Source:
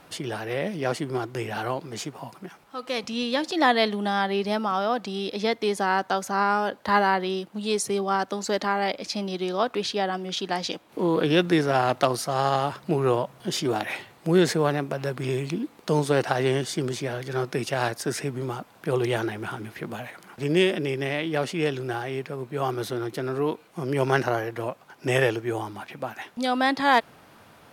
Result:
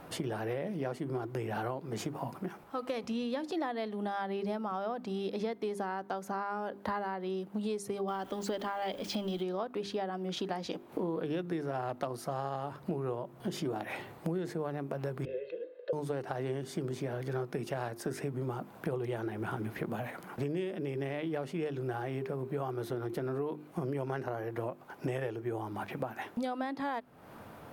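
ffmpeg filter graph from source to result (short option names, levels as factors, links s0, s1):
-filter_complex "[0:a]asettb=1/sr,asplit=3[s0][s1][s2];[s0]atrim=end=8.084[s3];[s1]atrim=start=8.08:end=9.43,asetpts=PTS-STARTPTS,afade=t=in:d=0.004:c=qsin,afade=t=out:st=1.346:d=0.004:c=qsin,aeval=exprs='val(0)+0.5*0.0133*sgn(val(0))':c=same,equalizer=f=3200:t=o:w=0.25:g=12[s4];[s2]atrim=start=9.426[s5];[s3][s4]acrossfade=d=0.004:c1=hsin:c2=qsin[s6];[s6][s5]acrossfade=d=0.004:c1=qsin:c2=hsin,asettb=1/sr,asplit=3[s7][s8][s9];[s7]atrim=end=15.254[s10];[s8]atrim=start=15.25:end=15.93,asetpts=PTS-STARTPTS,afade=t=in:d=0.004:c=qsin,afade=t=out:st=0.676:d=0.004:c=qsin,asplit=3[s11][s12][s13];[s11]bandpass=f=530:t=q:w=8,volume=1[s14];[s12]bandpass=f=1840:t=q:w=8,volume=0.501[s15];[s13]bandpass=f=2480:t=q:w=8,volume=0.355[s16];[s14][s15][s16]amix=inputs=3:normalize=0,highpass=420,equalizer=f=480:t=q:w=4:g=8,equalizer=f=710:t=q:w=4:g=-5,equalizer=f=1200:t=q:w=4:g=9,equalizer=f=2400:t=q:w=4:g=-5,equalizer=f=3900:t=q:w=4:g=9,lowpass=f=4300:w=0.5412,lowpass=f=4300:w=1.3066,aecho=1:1:1.9:0.97,atrim=end_sample=29988[s17];[s9]atrim=start=15.926[s18];[s10][s17]acrossfade=d=0.004:c1=hsin:c2=qsin[s19];[s19][s18]acrossfade=d=0.004:c1=qsin:c2=hsin,equalizer=f=5100:w=0.32:g=-12,bandreject=f=50:t=h:w=6,bandreject=f=100:t=h:w=6,bandreject=f=150:t=h:w=6,bandreject=f=200:t=h:w=6,bandreject=f=250:t=h:w=6,bandreject=f=300:t=h:w=6,bandreject=f=350:t=h:w=6,bandreject=f=400:t=h:w=6,acompressor=threshold=0.0141:ratio=10,volume=1.78"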